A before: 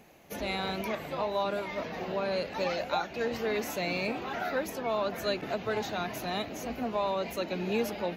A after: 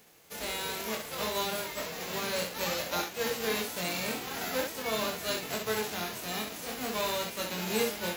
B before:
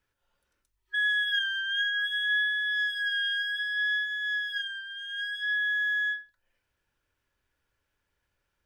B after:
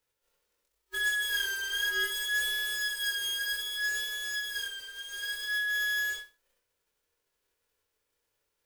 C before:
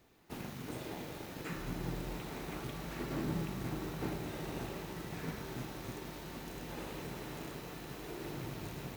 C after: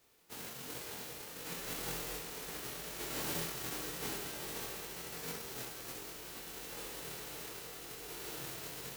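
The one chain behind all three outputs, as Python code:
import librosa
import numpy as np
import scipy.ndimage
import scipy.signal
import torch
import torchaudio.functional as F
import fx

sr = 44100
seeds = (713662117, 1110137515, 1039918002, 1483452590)

y = fx.envelope_flatten(x, sr, power=0.3)
y = fx.peak_eq(y, sr, hz=460.0, db=9.0, octaves=0.36)
y = fx.room_early_taps(y, sr, ms=(23, 66), db=(-3.0, -5.0))
y = F.gain(torch.from_numpy(y), -5.0).numpy()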